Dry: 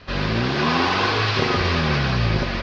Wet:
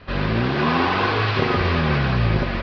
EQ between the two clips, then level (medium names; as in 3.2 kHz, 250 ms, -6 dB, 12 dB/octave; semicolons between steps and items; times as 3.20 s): distance through air 220 m; +1.5 dB